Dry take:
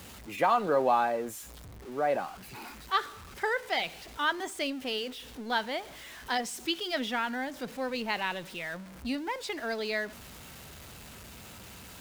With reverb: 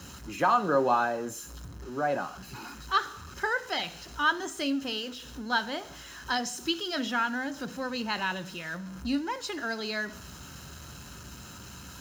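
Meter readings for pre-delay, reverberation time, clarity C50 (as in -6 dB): 3 ms, 0.55 s, 20.0 dB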